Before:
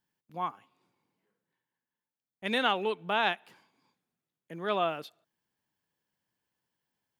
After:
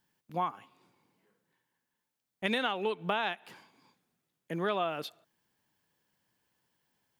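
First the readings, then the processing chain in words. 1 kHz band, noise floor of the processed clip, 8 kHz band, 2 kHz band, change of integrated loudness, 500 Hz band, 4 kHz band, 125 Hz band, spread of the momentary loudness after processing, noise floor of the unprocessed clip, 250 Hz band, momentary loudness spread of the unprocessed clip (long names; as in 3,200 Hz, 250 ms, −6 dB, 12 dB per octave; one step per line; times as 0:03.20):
−2.5 dB, below −85 dBFS, can't be measured, −3.0 dB, −2.5 dB, −1.5 dB, −3.0 dB, +3.5 dB, 10 LU, below −85 dBFS, +0.5 dB, 16 LU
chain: downward compressor 10 to 1, threshold −34 dBFS, peak gain reduction 13 dB
level +7 dB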